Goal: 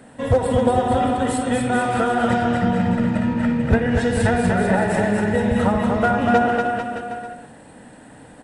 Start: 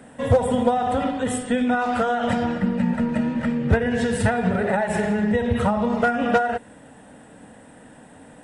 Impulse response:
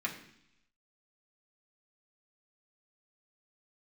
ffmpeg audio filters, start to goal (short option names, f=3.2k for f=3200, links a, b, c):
-filter_complex "[0:a]asplit=2[a][b];[b]asetrate=22050,aresample=44100,atempo=2,volume=-12dB[c];[a][c]amix=inputs=2:normalize=0,aecho=1:1:240|444|617.4|764.8|890.1:0.631|0.398|0.251|0.158|0.1,asplit=2[d][e];[1:a]atrim=start_sample=2205,adelay=60[f];[e][f]afir=irnorm=-1:irlink=0,volume=-16dB[g];[d][g]amix=inputs=2:normalize=0"